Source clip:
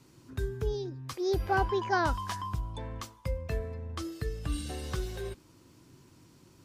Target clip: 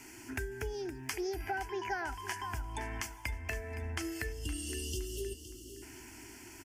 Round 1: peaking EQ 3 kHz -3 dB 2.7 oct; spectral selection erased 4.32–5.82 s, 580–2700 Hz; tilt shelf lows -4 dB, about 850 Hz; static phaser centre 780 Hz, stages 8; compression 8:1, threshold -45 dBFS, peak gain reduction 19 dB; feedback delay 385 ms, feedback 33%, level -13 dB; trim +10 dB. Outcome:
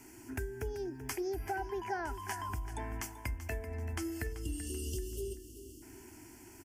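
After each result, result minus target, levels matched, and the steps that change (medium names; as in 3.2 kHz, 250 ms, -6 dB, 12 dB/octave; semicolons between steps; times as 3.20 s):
4 kHz band -5.5 dB; echo 131 ms early
change: peaking EQ 3 kHz +6 dB 2.7 oct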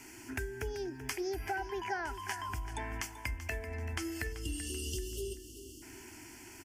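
echo 131 ms early
change: feedback delay 516 ms, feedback 33%, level -13 dB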